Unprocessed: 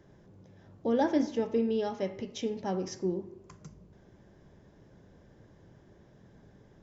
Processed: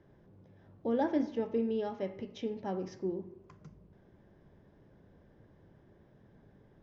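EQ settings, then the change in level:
high-frequency loss of the air 190 metres
mains-hum notches 60/120/180 Hz
−3.0 dB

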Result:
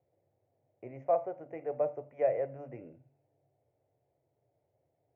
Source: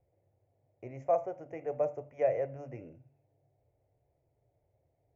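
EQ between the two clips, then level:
band-pass filter 140–2,400 Hz
0.0 dB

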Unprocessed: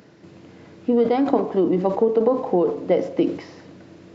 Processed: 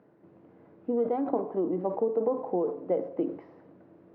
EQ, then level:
high-pass filter 72 Hz
low-pass filter 1,000 Hz 12 dB per octave
low-shelf EQ 240 Hz −9 dB
−6.5 dB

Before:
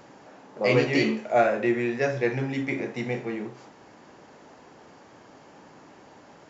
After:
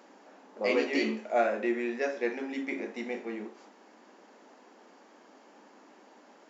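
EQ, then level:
linear-phase brick-wall high-pass 190 Hz
−5.5 dB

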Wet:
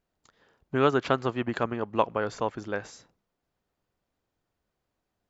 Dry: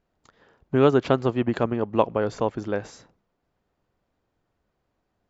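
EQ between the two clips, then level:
high-shelf EQ 2,700 Hz +7.5 dB
dynamic equaliser 1,400 Hz, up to +7 dB, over −37 dBFS, Q 0.84
−7.0 dB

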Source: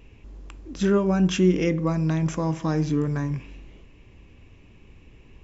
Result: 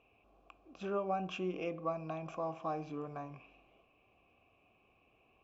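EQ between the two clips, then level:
formant filter a
low-shelf EQ 130 Hz +6.5 dB
+1.5 dB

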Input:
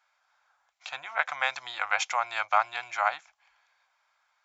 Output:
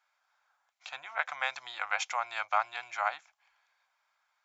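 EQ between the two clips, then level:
low-shelf EQ 210 Hz −5 dB
−4.5 dB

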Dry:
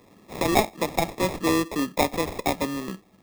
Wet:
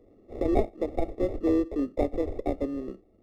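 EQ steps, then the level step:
Savitzky-Golay smoothing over 65 samples
low-shelf EQ 65 Hz +10.5 dB
phaser with its sweep stopped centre 400 Hz, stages 4
0.0 dB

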